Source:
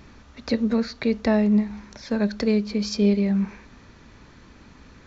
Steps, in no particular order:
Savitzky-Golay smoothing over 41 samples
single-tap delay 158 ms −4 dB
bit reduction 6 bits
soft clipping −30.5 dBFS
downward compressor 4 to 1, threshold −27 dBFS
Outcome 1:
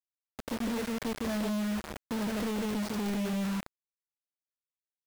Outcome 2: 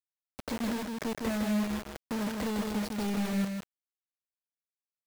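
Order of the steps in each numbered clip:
downward compressor, then single-tap delay, then soft clipping, then Savitzky-Golay smoothing, then bit reduction
downward compressor, then Savitzky-Golay smoothing, then soft clipping, then bit reduction, then single-tap delay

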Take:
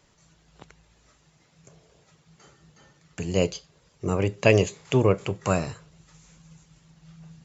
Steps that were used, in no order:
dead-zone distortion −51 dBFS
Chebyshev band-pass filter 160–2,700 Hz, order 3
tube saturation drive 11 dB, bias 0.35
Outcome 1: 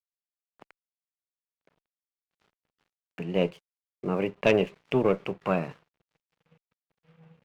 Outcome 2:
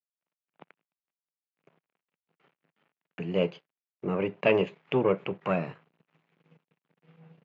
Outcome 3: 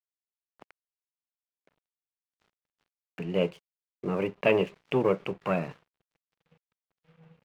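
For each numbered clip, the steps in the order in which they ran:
Chebyshev band-pass filter, then dead-zone distortion, then tube saturation
dead-zone distortion, then tube saturation, then Chebyshev band-pass filter
tube saturation, then Chebyshev band-pass filter, then dead-zone distortion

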